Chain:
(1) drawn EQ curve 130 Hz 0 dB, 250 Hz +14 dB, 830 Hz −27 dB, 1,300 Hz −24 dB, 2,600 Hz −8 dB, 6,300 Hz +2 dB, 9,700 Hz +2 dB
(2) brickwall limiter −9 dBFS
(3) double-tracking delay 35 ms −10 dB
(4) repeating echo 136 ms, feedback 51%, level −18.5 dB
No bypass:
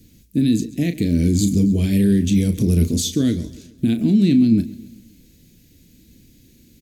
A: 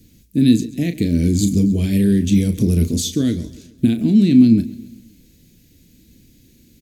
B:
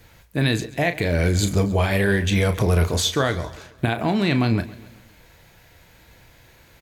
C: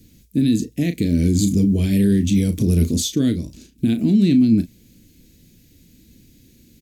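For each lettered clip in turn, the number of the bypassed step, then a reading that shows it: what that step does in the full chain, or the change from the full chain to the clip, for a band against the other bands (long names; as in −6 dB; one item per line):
2, change in crest factor +3.0 dB
1, 2 kHz band +15.0 dB
4, echo-to-direct ratio −17.0 dB to none audible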